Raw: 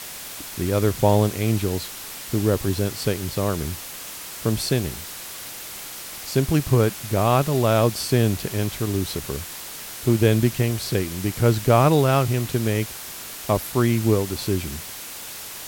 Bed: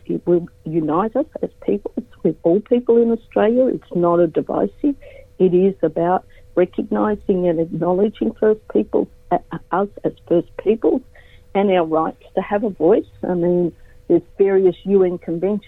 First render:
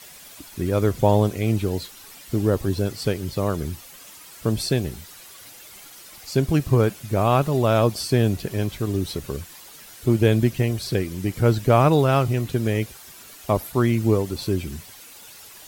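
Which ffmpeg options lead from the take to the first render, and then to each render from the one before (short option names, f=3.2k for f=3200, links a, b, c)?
-af "afftdn=nr=11:nf=-36"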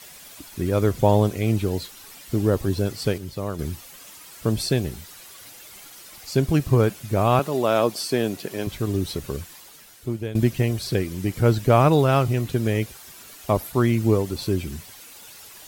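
-filter_complex "[0:a]asettb=1/sr,asplit=3[a][b][c];[a]atrim=end=7.394[d];[b]atrim=start=7.39:end=8.67,asetpts=PTS-STARTPTS,afade=t=in:d=0.004:c=qsin,afade=t=out:st=1.276:d=0.004:c=qsin,highpass=240[e];[c]atrim=start=8.666[f];[d][e]acrossfade=d=0.004:c1=hsin:c2=qsin[g];[g][f]acrossfade=d=0.004:c1=qsin:c2=hsin,asplit=4[h][i][j][k];[h]atrim=end=3.182[l];[i]atrim=start=3.178:end=3.592,asetpts=PTS-STARTPTS,volume=-5.5dB[m];[j]atrim=start=3.588:end=10.35,asetpts=PTS-STARTPTS,afade=t=out:st=5.832:d=0.93:silence=0.149624[n];[k]atrim=start=10.35,asetpts=PTS-STARTPTS,afade=t=in:d=0.004:c=hsin:silence=0.149624[o];[l][m]acrossfade=d=0.004:c1=hsin:c2=hsin[p];[n][o]concat=n=2:v=0:a=1[q];[p][q]acrossfade=d=0.004:c1=hsin:c2=hsin"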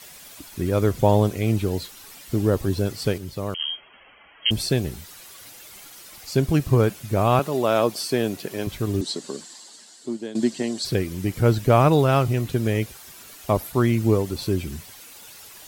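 -filter_complex "[0:a]asettb=1/sr,asplit=3[a][b][c];[a]atrim=end=3.544[d];[b]atrim=start=3.54:end=4.51,asetpts=PTS-STARTPTS,afade=t=in:d=0.004:c=qsin,afade=t=out:st=0.966:d=0.004:c=qsin,lowpass=f=2.8k:t=q:w=0.5098,lowpass=f=2.8k:t=q:w=0.6013,lowpass=f=2.8k:t=q:w=0.9,lowpass=f=2.8k:t=q:w=2.563,afreqshift=-3300[e];[c]atrim=start=4.506[f];[d][e]acrossfade=d=0.004:c1=hsin:c2=qsin[g];[g][f]acrossfade=d=0.004:c1=qsin:c2=hsin,asettb=1/sr,asplit=3[h][i][j];[h]atrim=end=9.014[k];[i]atrim=start=9.01:end=10.85,asetpts=PTS-STARTPTS,afade=t=in:d=0.004:c=qsin,afade=t=out:st=1.836:d=0.004:c=qsin,highpass=f=220:w=0.5412,highpass=f=220:w=1.3066,equalizer=f=230:t=q:w=4:g=4,equalizer=f=490:t=q:w=4:g=-4,equalizer=f=1.3k:t=q:w=4:g=-5,equalizer=f=2.4k:t=q:w=4:g=-9,equalizer=f=4.4k:t=q:w=4:g=8,equalizer=f=7.6k:t=q:w=4:g=10,lowpass=f=8.7k:w=0.5412,lowpass=f=8.7k:w=1.3066[l];[j]atrim=start=10.846[m];[k][l]acrossfade=d=0.004:c1=hsin:c2=qsin[n];[n][m]acrossfade=d=0.004:c1=qsin:c2=hsin"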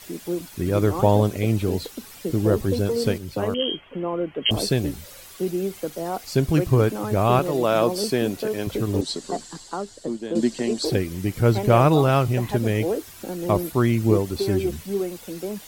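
-filter_complex "[1:a]volume=-11.5dB[a];[0:a][a]amix=inputs=2:normalize=0"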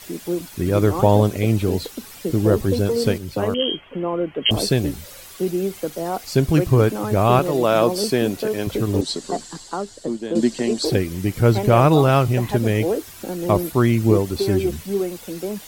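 -af "volume=3dB,alimiter=limit=-3dB:level=0:latency=1"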